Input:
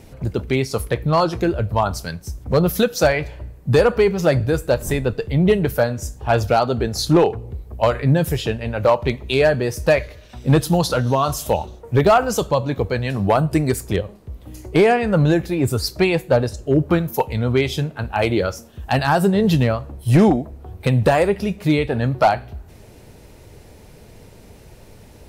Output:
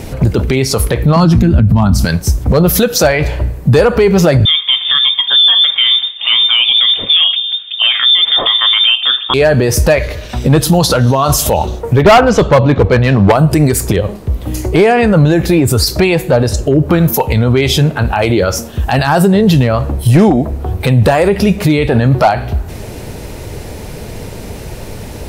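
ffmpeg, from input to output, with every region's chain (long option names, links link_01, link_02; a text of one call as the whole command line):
ffmpeg -i in.wav -filter_complex "[0:a]asettb=1/sr,asplit=3[link_01][link_02][link_03];[link_01]atrim=end=1.164[link_04];[link_02]atrim=start=1.16:end=2.05,asetpts=PTS-STARTPTS,afade=type=in:duration=0.004:curve=qsin,afade=type=out:start_time=0.886:duration=0.004:curve=qsin,highpass=frequency=54:width=0.5412,highpass=frequency=54:width=1.3066,lowshelf=frequency=320:width_type=q:width=3:gain=10.5,acompressor=threshold=-15dB:ratio=2:attack=3.2:release=140:knee=1:detection=peak[link_05];[link_03]atrim=start=2.046[link_06];[link_04][link_05]acrossfade=duration=0.004:curve1=hsin:curve2=qsin[link_07];[link_07][link_06]acrossfade=duration=0.004:curve1=qsin:curve2=hsin,asettb=1/sr,asplit=3[link_08][link_09][link_10];[link_08]atrim=end=4.454[link_11];[link_09]atrim=start=4.45:end=9.34,asetpts=PTS-STARTPTS,afade=type=in:duration=0.004:curve=qsin,afade=type=out:start_time=4.886:duration=0.004:curve=qsin,highpass=frequency=98:width=0.5412,highpass=frequency=98:width=1.3066,lowpass=frequency=3100:width_type=q:width=0.5098,lowpass=frequency=3100:width_type=q:width=0.6013,lowpass=frequency=3100:width_type=q:width=0.9,lowpass=frequency=3100:width_type=q:width=2.563,afreqshift=-3700[link_12];[link_10]atrim=start=9.336[link_13];[link_11][link_12]acrossfade=duration=0.004:curve1=hsin:curve2=qsin[link_14];[link_14][link_13]acrossfade=duration=0.004:curve1=qsin:curve2=hsin,asettb=1/sr,asplit=3[link_15][link_16][link_17];[link_15]atrim=end=12.014[link_18];[link_16]atrim=start=12.01:end=13.32,asetpts=PTS-STARTPTS,afade=type=in:duration=0.004:curve=qsin,afade=type=out:start_time=1.306:duration=0.004:curve=qsin,lowpass=3200,volume=15dB,asoftclip=hard,volume=-15dB[link_19];[link_17]atrim=start=13.316[link_20];[link_18][link_19]acrossfade=duration=0.004:curve1=hsin:curve2=qsin[link_21];[link_21][link_20]acrossfade=duration=0.004:curve1=qsin:curve2=hsin,acompressor=threshold=-19dB:ratio=4,alimiter=level_in=19dB:limit=-1dB:release=50:level=0:latency=1,volume=-1dB" out.wav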